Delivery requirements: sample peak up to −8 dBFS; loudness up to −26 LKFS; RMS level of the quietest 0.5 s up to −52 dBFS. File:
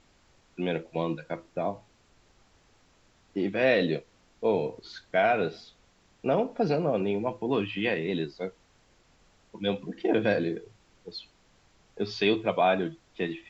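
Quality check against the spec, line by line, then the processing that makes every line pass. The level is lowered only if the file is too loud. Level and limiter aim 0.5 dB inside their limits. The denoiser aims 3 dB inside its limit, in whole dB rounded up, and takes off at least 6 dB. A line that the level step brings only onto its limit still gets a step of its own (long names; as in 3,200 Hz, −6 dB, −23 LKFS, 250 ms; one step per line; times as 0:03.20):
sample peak −11.5 dBFS: in spec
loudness −29.0 LKFS: in spec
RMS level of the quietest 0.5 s −63 dBFS: in spec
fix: no processing needed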